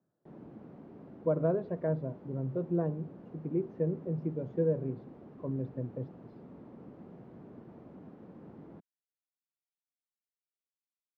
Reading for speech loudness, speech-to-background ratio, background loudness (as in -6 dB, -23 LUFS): -34.5 LUFS, 17.0 dB, -51.5 LUFS